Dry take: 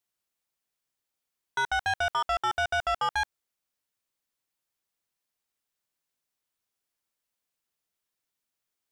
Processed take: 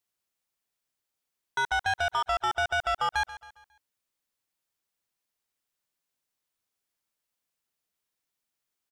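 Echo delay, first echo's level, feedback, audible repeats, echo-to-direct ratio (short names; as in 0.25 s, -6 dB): 0.136 s, -16.0 dB, 44%, 3, -15.0 dB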